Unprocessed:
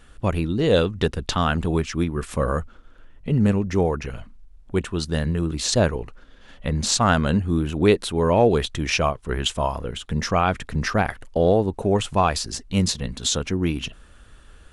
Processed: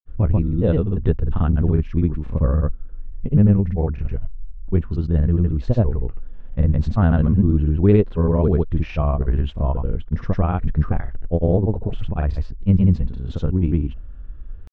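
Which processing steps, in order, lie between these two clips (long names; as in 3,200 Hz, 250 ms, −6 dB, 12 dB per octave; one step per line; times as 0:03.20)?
low-pass filter 3,000 Hz 12 dB per octave
spectral tilt −4.5 dB per octave
granular cloud, pitch spread up and down by 0 semitones
level −6 dB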